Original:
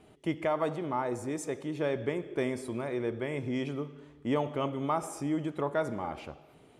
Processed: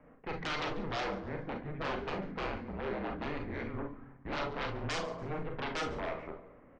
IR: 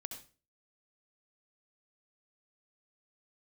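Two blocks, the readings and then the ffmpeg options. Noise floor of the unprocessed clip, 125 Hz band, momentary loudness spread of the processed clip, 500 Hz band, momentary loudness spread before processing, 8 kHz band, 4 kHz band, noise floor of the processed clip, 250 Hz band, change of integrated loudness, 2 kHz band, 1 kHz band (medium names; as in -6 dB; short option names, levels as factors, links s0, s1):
-58 dBFS, -4.0 dB, 6 LU, -6.5 dB, 8 LU, -7.0 dB, +4.5 dB, -58 dBFS, -7.5 dB, -5.0 dB, +2.0 dB, -3.0 dB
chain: -filter_complex "[0:a]aeval=exprs='0.126*(cos(1*acos(clip(val(0)/0.126,-1,1)))-cos(1*PI/2))+0.00447*(cos(7*acos(clip(val(0)/0.126,-1,1)))-cos(7*PI/2))':c=same,highpass=f=150:t=q:w=0.5412,highpass=f=150:t=q:w=1.307,lowpass=f=2100:t=q:w=0.5176,lowpass=f=2100:t=q:w=0.7071,lowpass=f=2100:t=q:w=1.932,afreqshift=-160,aeval=exprs='0.141*sin(PI/2*6.31*val(0)/0.141)':c=same,equalizer=f=99:t=o:w=2.9:g=-8.5,asplit=4[s0][s1][s2][s3];[s1]adelay=142,afreqshift=-58,volume=0.119[s4];[s2]adelay=284,afreqshift=-116,volume=0.0427[s5];[s3]adelay=426,afreqshift=-174,volume=0.0155[s6];[s0][s4][s5][s6]amix=inputs=4:normalize=0[s7];[1:a]atrim=start_sample=2205,asetrate=83790,aresample=44100[s8];[s7][s8]afir=irnorm=-1:irlink=0,volume=0.562"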